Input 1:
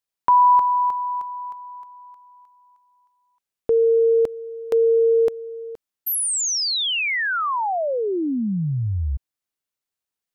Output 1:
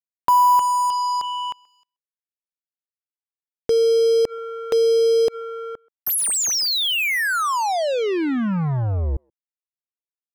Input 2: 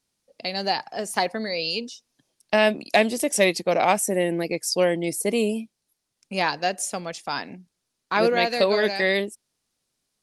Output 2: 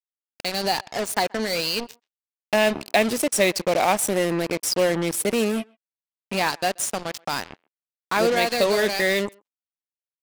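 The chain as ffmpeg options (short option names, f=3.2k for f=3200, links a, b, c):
-filter_complex "[0:a]asplit=2[a][b];[b]acompressor=threshold=-28dB:ratio=6:attack=4.4:release=80:knee=1:detection=rms,volume=1.5dB[c];[a][c]amix=inputs=2:normalize=0,acrusher=bits=3:mix=0:aa=0.5,asplit=2[d][e];[e]adelay=130,highpass=300,lowpass=3.4k,asoftclip=type=hard:threshold=-11.5dB,volume=-27dB[f];[d][f]amix=inputs=2:normalize=0,volume=-2.5dB"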